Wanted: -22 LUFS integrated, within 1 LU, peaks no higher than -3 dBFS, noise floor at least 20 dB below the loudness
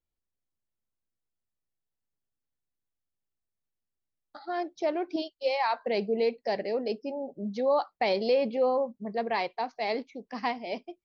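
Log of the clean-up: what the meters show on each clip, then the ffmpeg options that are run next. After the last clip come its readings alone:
loudness -30.0 LUFS; peak -16.0 dBFS; loudness target -22.0 LUFS
-> -af "volume=8dB"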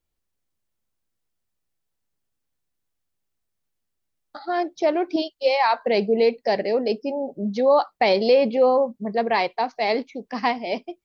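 loudness -22.0 LUFS; peak -8.0 dBFS; noise floor -78 dBFS

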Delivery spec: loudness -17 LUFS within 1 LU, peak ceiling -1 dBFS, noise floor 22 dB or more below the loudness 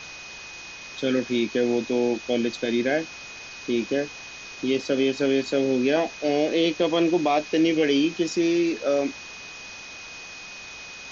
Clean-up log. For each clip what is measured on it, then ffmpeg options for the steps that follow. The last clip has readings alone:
steady tone 2500 Hz; tone level -40 dBFS; noise floor -40 dBFS; noise floor target -46 dBFS; loudness -24.0 LUFS; peak -10.5 dBFS; loudness target -17.0 LUFS
-> -af "bandreject=f=2.5k:w=30"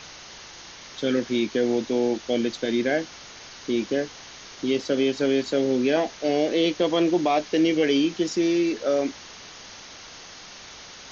steady tone none; noise floor -44 dBFS; noise floor target -46 dBFS
-> -af "afftdn=nr=6:nf=-44"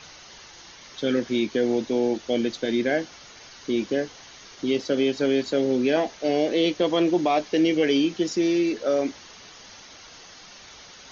noise floor -47 dBFS; loudness -24.0 LUFS; peak -11.0 dBFS; loudness target -17.0 LUFS
-> -af "volume=7dB"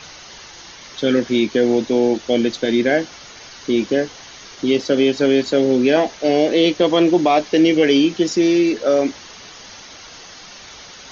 loudness -17.0 LUFS; peak -4.0 dBFS; noise floor -40 dBFS

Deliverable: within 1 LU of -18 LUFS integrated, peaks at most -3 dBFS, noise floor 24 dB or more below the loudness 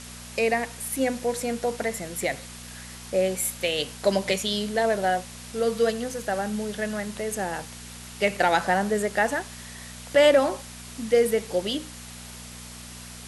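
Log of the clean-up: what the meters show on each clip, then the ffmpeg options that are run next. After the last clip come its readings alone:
hum 60 Hz; harmonics up to 240 Hz; hum level -43 dBFS; noise floor -42 dBFS; noise floor target -50 dBFS; loudness -25.5 LUFS; peak -8.0 dBFS; loudness target -18.0 LUFS
-> -af "bandreject=f=60:t=h:w=4,bandreject=f=120:t=h:w=4,bandreject=f=180:t=h:w=4,bandreject=f=240:t=h:w=4"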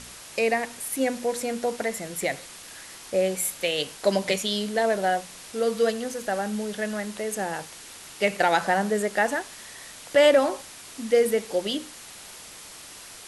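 hum none; noise floor -44 dBFS; noise floor target -50 dBFS
-> -af "afftdn=nr=6:nf=-44"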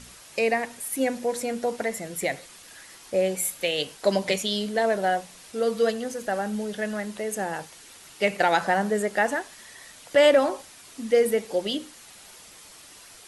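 noise floor -48 dBFS; noise floor target -50 dBFS
-> -af "afftdn=nr=6:nf=-48"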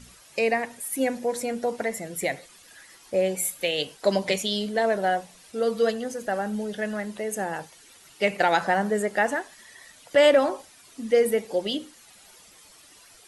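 noise floor -53 dBFS; loudness -25.5 LUFS; peak -8.5 dBFS; loudness target -18.0 LUFS
-> -af "volume=7.5dB,alimiter=limit=-3dB:level=0:latency=1"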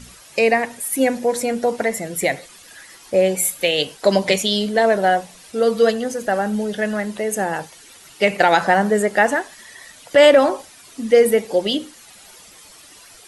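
loudness -18.5 LUFS; peak -3.0 dBFS; noise floor -45 dBFS

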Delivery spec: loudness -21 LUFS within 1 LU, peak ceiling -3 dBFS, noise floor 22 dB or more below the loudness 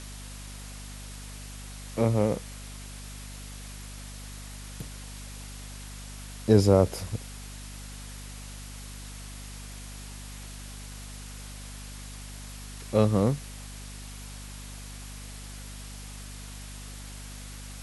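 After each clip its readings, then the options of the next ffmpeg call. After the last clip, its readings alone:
hum 50 Hz; harmonics up to 250 Hz; hum level -41 dBFS; noise floor -42 dBFS; noise floor target -55 dBFS; loudness -33.0 LUFS; peak -7.0 dBFS; loudness target -21.0 LUFS
-> -af "bandreject=f=50:t=h:w=4,bandreject=f=100:t=h:w=4,bandreject=f=150:t=h:w=4,bandreject=f=200:t=h:w=4,bandreject=f=250:t=h:w=4"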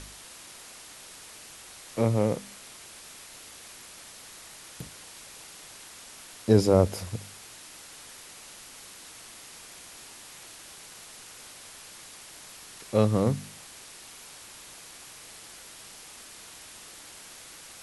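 hum none; noise floor -48 dBFS; noise floor target -49 dBFS
-> -af "afftdn=nr=6:nf=-48"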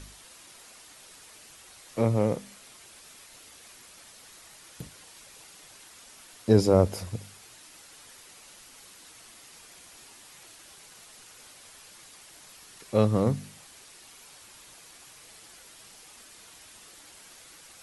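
noise floor -52 dBFS; loudness -26.0 LUFS; peak -6.0 dBFS; loudness target -21.0 LUFS
-> -af "volume=5dB,alimiter=limit=-3dB:level=0:latency=1"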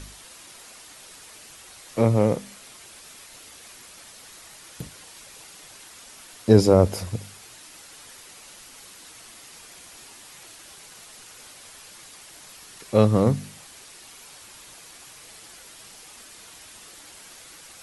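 loudness -21.0 LUFS; peak -3.0 dBFS; noise floor -47 dBFS

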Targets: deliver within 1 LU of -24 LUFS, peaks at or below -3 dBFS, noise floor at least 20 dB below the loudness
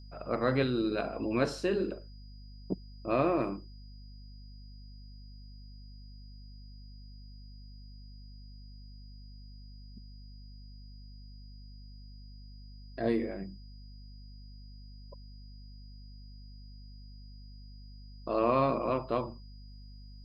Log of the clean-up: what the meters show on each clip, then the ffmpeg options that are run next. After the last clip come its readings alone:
hum 50 Hz; harmonics up to 250 Hz; hum level -46 dBFS; steady tone 4900 Hz; tone level -60 dBFS; loudness -32.0 LUFS; peak -14.5 dBFS; loudness target -24.0 LUFS
-> -af "bandreject=f=50:t=h:w=4,bandreject=f=100:t=h:w=4,bandreject=f=150:t=h:w=4,bandreject=f=200:t=h:w=4,bandreject=f=250:t=h:w=4"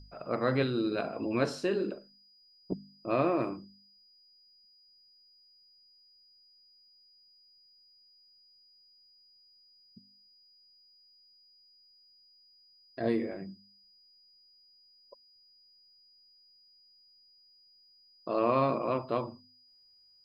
hum none; steady tone 4900 Hz; tone level -60 dBFS
-> -af "bandreject=f=4.9k:w=30"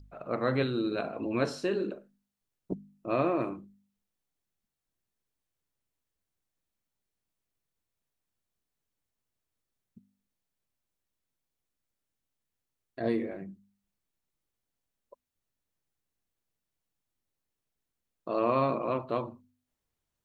steady tone none; loudness -31.5 LUFS; peak -14.5 dBFS; loudness target -24.0 LUFS
-> -af "volume=7.5dB"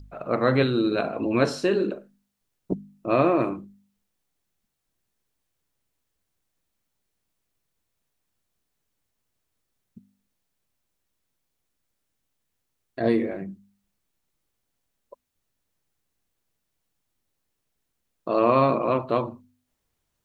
loudness -24.0 LUFS; peak -7.0 dBFS; noise floor -79 dBFS

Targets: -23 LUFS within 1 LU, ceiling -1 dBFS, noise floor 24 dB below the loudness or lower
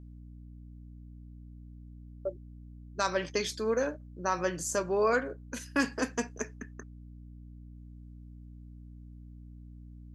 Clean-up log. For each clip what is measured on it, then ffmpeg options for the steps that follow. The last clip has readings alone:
hum 60 Hz; harmonics up to 300 Hz; hum level -46 dBFS; loudness -32.0 LUFS; peak -13.5 dBFS; loudness target -23.0 LUFS
-> -af "bandreject=f=60:t=h:w=6,bandreject=f=120:t=h:w=6,bandreject=f=180:t=h:w=6,bandreject=f=240:t=h:w=6,bandreject=f=300:t=h:w=6"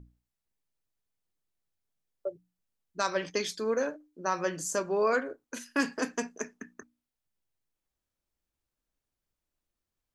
hum none; loudness -32.0 LUFS; peak -13.0 dBFS; loudness target -23.0 LUFS
-> -af "volume=9dB"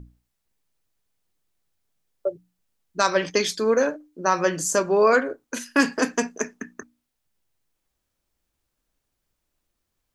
loudness -23.0 LUFS; peak -4.0 dBFS; noise floor -79 dBFS

